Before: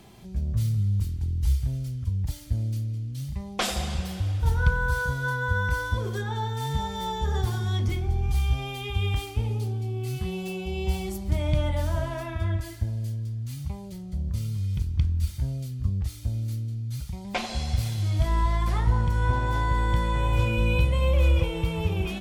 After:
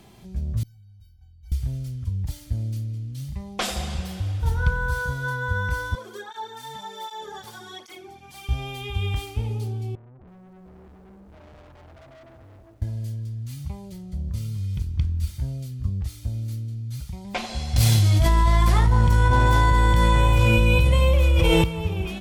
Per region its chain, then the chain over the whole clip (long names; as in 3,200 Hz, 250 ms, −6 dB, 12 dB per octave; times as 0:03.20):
0:00.63–0:01.52: parametric band 8,800 Hz −10 dB 0.88 octaves + tuned comb filter 760 Hz, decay 0.22 s, mix 100%
0:05.95–0:08.49: high-pass filter 400 Hz + through-zero flanger with one copy inverted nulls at 1.3 Hz, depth 3 ms
0:09.95–0:12.82: Chebyshev low-pass with heavy ripple 900 Hz, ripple 9 dB + tube saturation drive 47 dB, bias 0.75 + feedback echo at a low word length 326 ms, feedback 35%, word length 10 bits, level −10.5 dB
0:17.76–0:21.64: high-shelf EQ 4,100 Hz +5 dB + envelope flattener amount 100%
whole clip: no processing